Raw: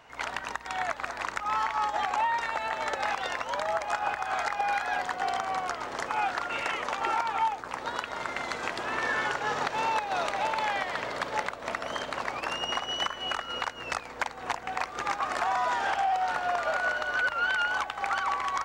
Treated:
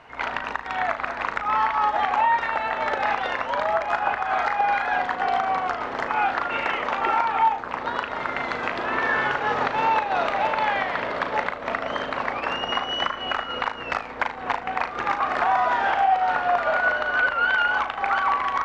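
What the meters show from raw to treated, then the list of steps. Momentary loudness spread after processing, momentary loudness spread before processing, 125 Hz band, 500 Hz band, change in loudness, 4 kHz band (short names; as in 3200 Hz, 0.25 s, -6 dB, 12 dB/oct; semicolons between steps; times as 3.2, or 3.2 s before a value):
7 LU, 6 LU, +6.0 dB, +6.5 dB, +6.5 dB, +3.0 dB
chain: flutter echo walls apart 6.5 m, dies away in 0.26 s; requantised 10-bit, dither none; LPF 2900 Hz 12 dB/oct; gain +6 dB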